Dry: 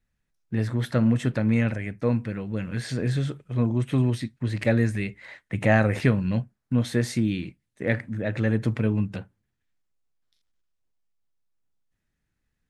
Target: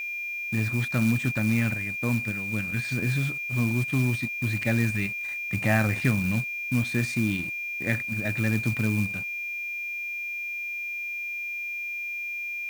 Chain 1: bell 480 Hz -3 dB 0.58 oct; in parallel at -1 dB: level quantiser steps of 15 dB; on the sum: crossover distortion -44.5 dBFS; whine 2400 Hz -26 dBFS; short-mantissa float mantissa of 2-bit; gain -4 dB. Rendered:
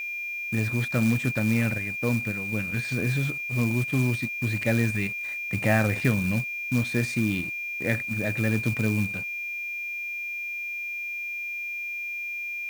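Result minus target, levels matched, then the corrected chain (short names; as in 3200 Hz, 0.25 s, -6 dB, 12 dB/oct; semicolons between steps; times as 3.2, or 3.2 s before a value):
500 Hz band +4.0 dB
bell 480 Hz -10.5 dB 0.58 oct; in parallel at -1 dB: level quantiser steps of 15 dB; on the sum: crossover distortion -44.5 dBFS; whine 2400 Hz -26 dBFS; short-mantissa float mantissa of 2-bit; gain -4 dB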